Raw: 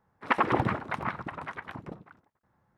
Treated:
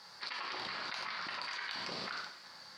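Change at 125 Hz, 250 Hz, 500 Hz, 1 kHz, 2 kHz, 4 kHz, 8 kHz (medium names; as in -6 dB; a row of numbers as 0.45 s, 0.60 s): -23.5 dB, -19.0 dB, -15.0 dB, -12.0 dB, -5.0 dB, +8.5 dB, no reading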